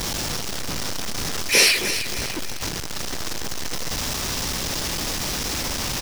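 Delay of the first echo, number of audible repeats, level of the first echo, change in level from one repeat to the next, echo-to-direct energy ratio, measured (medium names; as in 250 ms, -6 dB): 301 ms, 3, -10.5 dB, -7.5 dB, -9.5 dB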